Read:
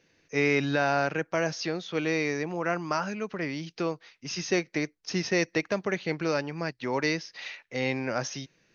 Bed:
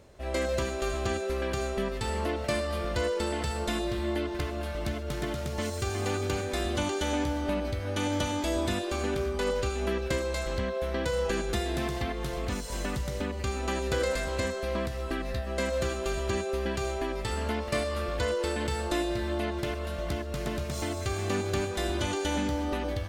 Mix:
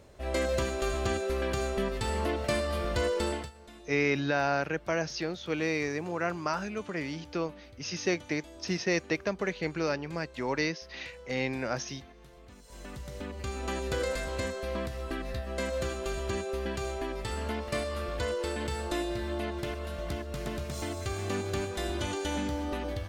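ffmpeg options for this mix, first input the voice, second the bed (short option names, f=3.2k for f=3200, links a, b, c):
-filter_complex "[0:a]adelay=3550,volume=-2.5dB[a];[1:a]volume=17.5dB,afade=t=out:st=3.29:d=0.22:silence=0.0944061,afade=t=in:st=12.56:d=1.15:silence=0.133352[b];[a][b]amix=inputs=2:normalize=0"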